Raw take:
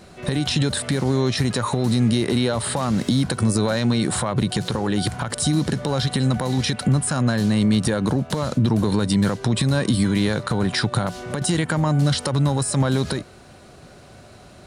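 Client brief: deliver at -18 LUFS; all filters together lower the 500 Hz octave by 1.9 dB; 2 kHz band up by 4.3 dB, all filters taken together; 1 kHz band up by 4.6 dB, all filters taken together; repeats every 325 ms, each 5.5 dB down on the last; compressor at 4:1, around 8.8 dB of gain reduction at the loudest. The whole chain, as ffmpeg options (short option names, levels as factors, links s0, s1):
-af "equalizer=f=500:t=o:g=-4,equalizer=f=1000:t=o:g=6,equalizer=f=2000:t=o:g=3.5,acompressor=threshold=0.0501:ratio=4,aecho=1:1:325|650|975|1300|1625|1950|2275:0.531|0.281|0.149|0.079|0.0419|0.0222|0.0118,volume=2.99"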